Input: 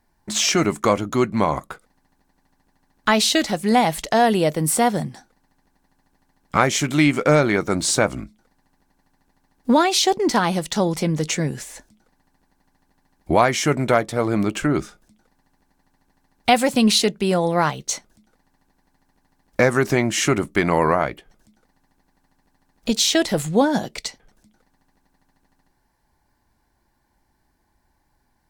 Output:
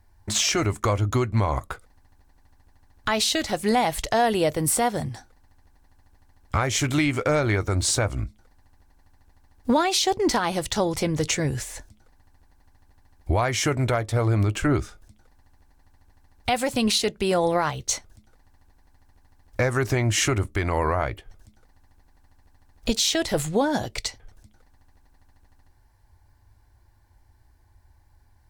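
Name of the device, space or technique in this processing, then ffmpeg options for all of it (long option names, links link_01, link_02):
car stereo with a boomy subwoofer: -af "lowshelf=frequency=130:width_type=q:width=3:gain=9,alimiter=limit=-13dB:level=0:latency=1:release=282,volume=1dB"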